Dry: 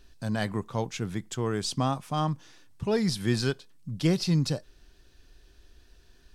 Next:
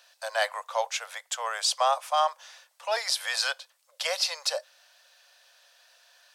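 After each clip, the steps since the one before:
Butterworth high-pass 530 Hz 96 dB per octave
level +7 dB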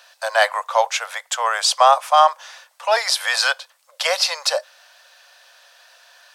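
parametric band 1,100 Hz +5 dB 2.1 octaves
level +7 dB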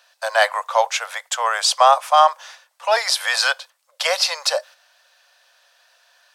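noise gate −39 dBFS, range −7 dB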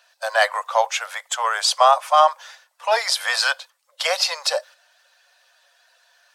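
spectral magnitudes quantised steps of 15 dB
level −1 dB

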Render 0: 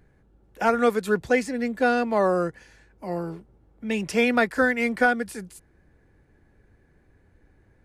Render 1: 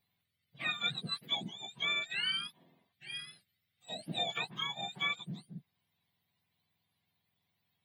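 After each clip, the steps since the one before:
frequency axis turned over on the octave scale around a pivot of 1,300 Hz
drawn EQ curve 160 Hz 0 dB, 290 Hz −8 dB, 720 Hz −5 dB, 1,000 Hz −15 dB, 1,600 Hz −2 dB, 2,300 Hz +1 dB, 3,900 Hz −1 dB, 6,400 Hz −24 dB, 12,000 Hz −7 dB
level −7.5 dB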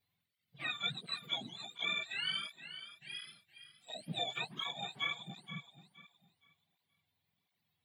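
feedback echo with a high-pass in the loop 470 ms, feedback 27%, high-pass 180 Hz, level −11.5 dB
through-zero flanger with one copy inverted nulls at 1.4 Hz, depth 6.1 ms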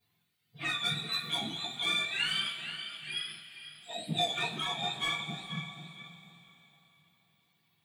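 soft clipping −32.5 dBFS, distortion −14 dB
convolution reverb, pre-delay 3 ms, DRR −8 dB

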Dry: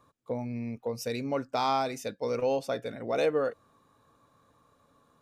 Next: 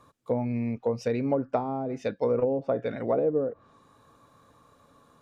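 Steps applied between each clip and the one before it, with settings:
treble cut that deepens with the level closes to 390 Hz, closed at −24.5 dBFS
level +6 dB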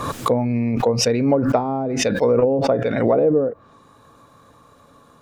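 background raised ahead of every attack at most 42 dB per second
level +8 dB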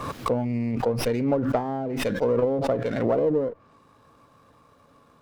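windowed peak hold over 5 samples
level −6 dB

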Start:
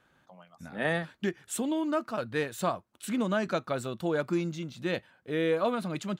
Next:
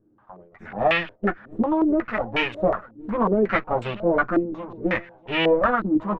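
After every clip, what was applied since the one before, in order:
lower of the sound and its delayed copy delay 9.6 ms
repeating echo 642 ms, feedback 25%, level −20.5 dB
low-pass on a step sequencer 5.5 Hz 310–2,700 Hz
level +6 dB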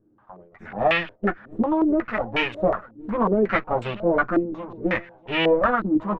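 no processing that can be heard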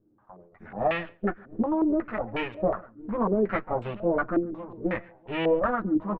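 low-pass filter 1,200 Hz 6 dB per octave
slap from a distant wall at 24 metres, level −26 dB
level −3.5 dB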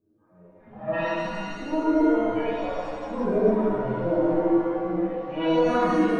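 harmonic-percussive split with one part muted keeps harmonic
reverb with rising layers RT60 2.1 s, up +7 semitones, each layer −8 dB, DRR −10 dB
level −5.5 dB

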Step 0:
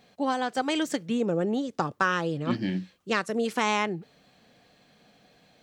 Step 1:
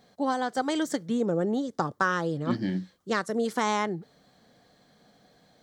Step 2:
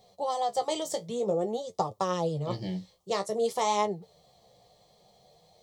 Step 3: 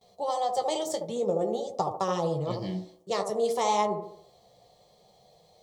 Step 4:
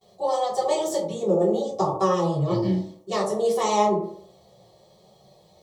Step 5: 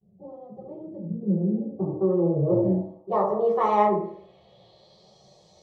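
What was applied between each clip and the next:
parametric band 2,600 Hz −13.5 dB 0.38 octaves
flanger 0.52 Hz, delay 9.2 ms, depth 9.2 ms, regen +39%; phaser with its sweep stopped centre 640 Hz, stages 4; level +6.5 dB
noise gate with hold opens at −54 dBFS; delay with a band-pass on its return 73 ms, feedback 44%, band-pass 500 Hz, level −4 dB
convolution reverb RT60 0.35 s, pre-delay 3 ms, DRR −7.5 dB; level −3.5 dB
low-pass filter sweep 200 Hz → 6,100 Hz, 0:01.50–0:05.27; level −1.5 dB

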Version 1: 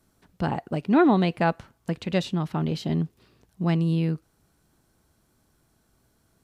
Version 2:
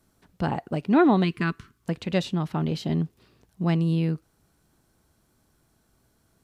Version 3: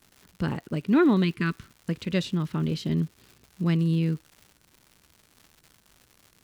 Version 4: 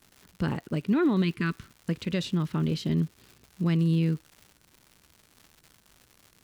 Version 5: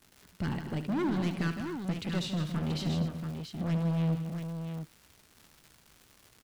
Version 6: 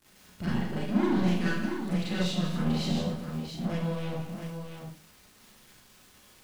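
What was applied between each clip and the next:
gain on a spectral selection 0:01.24–0:01.83, 450–1,000 Hz −19 dB
parametric band 750 Hz −14.5 dB 0.59 octaves; surface crackle 220 per second −41 dBFS
brickwall limiter −17 dBFS, peak gain reduction 6 dB
gain into a clipping stage and back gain 26.5 dB; on a send: multi-tap delay 72/159/245/683 ms −11/−10/−14/−7 dB; on the sum: level −2 dB
four-comb reverb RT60 0.39 s, combs from 30 ms, DRR −7 dB; level −4 dB

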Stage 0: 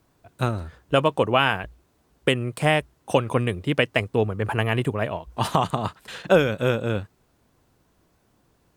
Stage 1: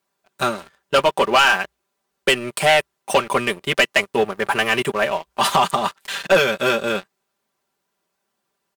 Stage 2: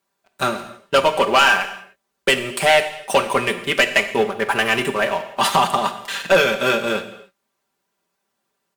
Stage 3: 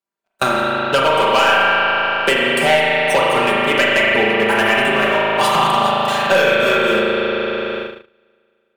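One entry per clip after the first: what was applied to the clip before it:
high-pass filter 910 Hz 6 dB per octave; comb filter 5.1 ms, depth 76%; leveller curve on the samples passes 3; level −1.5 dB
reverb whose tail is shaped and stops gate 320 ms falling, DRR 8 dB
spring reverb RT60 2.9 s, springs 37 ms, chirp 50 ms, DRR −5 dB; noise gate −31 dBFS, range −35 dB; multiband upward and downward compressor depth 70%; level −2 dB

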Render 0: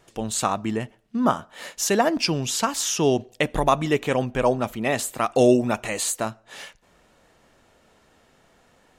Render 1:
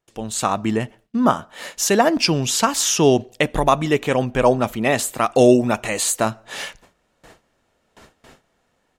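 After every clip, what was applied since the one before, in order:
noise gate with hold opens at −47 dBFS
automatic gain control gain up to 14 dB
level −1 dB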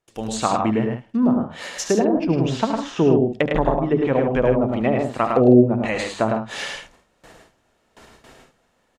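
mains-hum notches 50/100/150/200 Hz
treble cut that deepens with the level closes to 420 Hz, closed at −12.5 dBFS
loudspeakers that aren't time-aligned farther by 25 metres −10 dB, 36 metres −4 dB, 53 metres −10 dB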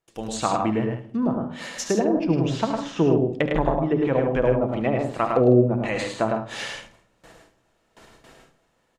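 rectangular room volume 1,900 cubic metres, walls furnished, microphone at 0.69 metres
level −3 dB

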